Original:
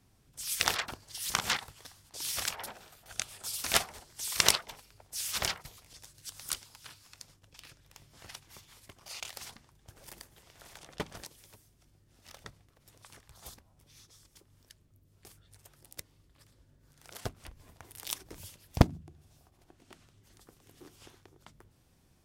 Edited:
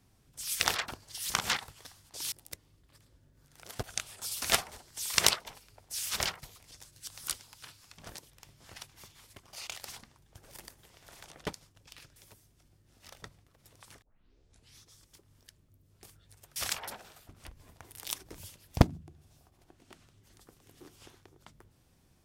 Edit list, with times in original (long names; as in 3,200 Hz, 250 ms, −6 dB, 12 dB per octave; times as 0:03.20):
0:02.32–0:03.05: swap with 0:15.78–0:17.29
0:07.20–0:07.83: swap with 0:11.06–0:11.38
0:13.24: tape start 0.76 s